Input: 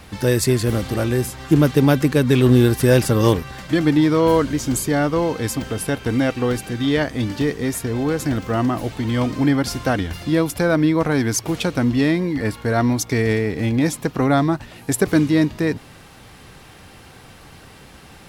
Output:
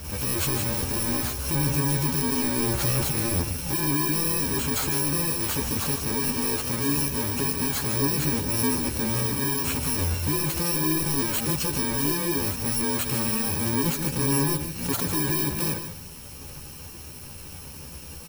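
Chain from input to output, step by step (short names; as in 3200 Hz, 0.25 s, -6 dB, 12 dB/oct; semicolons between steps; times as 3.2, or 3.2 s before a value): FFT order left unsorted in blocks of 64 samples; in parallel at 0 dB: negative-ratio compressor -21 dBFS; on the sum: soft clip -17.5 dBFS, distortion -8 dB; on a send: echo 0.149 s -9.5 dB; on the sum: chorus voices 2, 0.87 Hz, delay 13 ms, depth 1.4 ms; backwards sustainer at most 78 dB/s; gain -2 dB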